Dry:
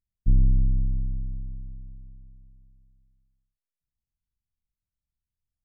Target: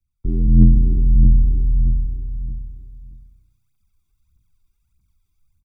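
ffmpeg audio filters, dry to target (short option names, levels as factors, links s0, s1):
-filter_complex "[0:a]aecho=1:1:1.1:0.84,adynamicequalizer=threshold=0.0126:dfrequency=160:dqfactor=2.1:tfrequency=160:tqfactor=2.1:attack=5:release=100:ratio=0.375:range=2:mode=boostabove:tftype=bell,acrossover=split=120|200[s0][s1][s2];[s0]acompressor=threshold=0.0562:ratio=8[s3];[s3][s1][s2]amix=inputs=3:normalize=0,asetrate=57191,aresample=44100,atempo=0.771105,aphaser=in_gain=1:out_gain=1:delay=3:decay=0.67:speed=1.6:type=triangular,dynaudnorm=f=310:g=3:m=3.98,asplit=2[s4][s5];[s5]asplit=3[s6][s7][s8];[s6]adelay=144,afreqshift=31,volume=0.106[s9];[s7]adelay=288,afreqshift=62,volume=0.0351[s10];[s8]adelay=432,afreqshift=93,volume=0.0115[s11];[s9][s10][s11]amix=inputs=3:normalize=0[s12];[s4][s12]amix=inputs=2:normalize=0"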